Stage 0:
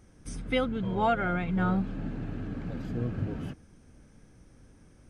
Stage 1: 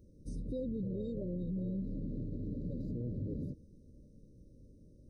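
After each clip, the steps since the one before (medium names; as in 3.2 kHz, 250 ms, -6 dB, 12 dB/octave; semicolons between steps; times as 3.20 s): FFT band-reject 620–3700 Hz; peaking EQ 8.2 kHz -14.5 dB 2.9 oct; peak limiter -29 dBFS, peak gain reduction 10 dB; trim -2 dB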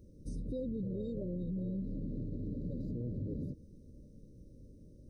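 compression 1.5:1, threshold -43 dBFS, peak gain reduction 3.5 dB; trim +3 dB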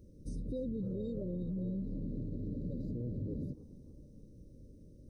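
tape echo 293 ms, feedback 56%, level -17 dB, low-pass 5.1 kHz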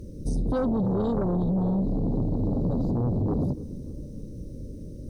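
sine folder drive 5 dB, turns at -29.5 dBFS; trim +8 dB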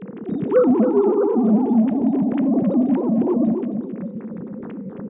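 formants replaced by sine waves; feedback delay 268 ms, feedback 23%, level -8.5 dB; on a send at -15 dB: reverberation RT60 1.0 s, pre-delay 4 ms; on the sum: trim +6.5 dB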